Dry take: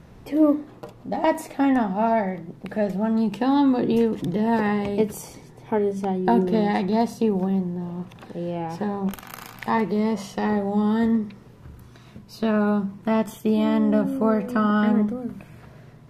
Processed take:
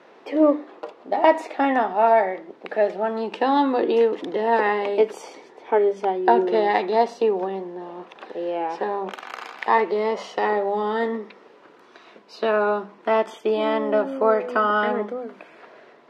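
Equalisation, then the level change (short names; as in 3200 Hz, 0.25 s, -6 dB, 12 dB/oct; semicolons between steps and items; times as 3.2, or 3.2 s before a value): HPF 360 Hz 24 dB/oct; LPF 3700 Hz 12 dB/oct; +5.5 dB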